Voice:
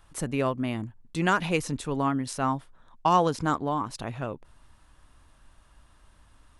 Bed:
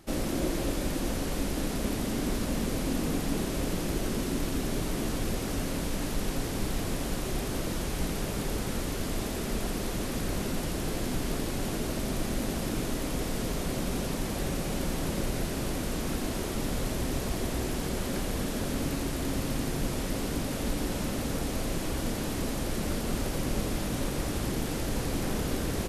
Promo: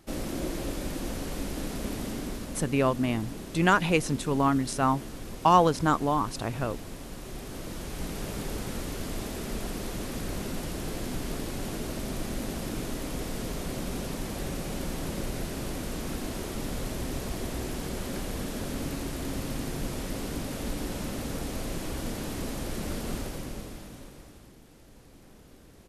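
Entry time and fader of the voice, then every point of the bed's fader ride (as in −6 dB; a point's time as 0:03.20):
2.40 s, +2.0 dB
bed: 0:02.07 −3 dB
0:02.71 −9.5 dB
0:07.12 −9.5 dB
0:08.29 −2.5 dB
0:23.13 −2.5 dB
0:24.59 −23 dB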